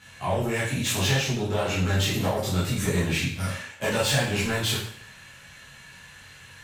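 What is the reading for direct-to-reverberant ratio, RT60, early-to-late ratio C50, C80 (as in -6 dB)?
-10.0 dB, 0.60 s, 3.5 dB, 7.5 dB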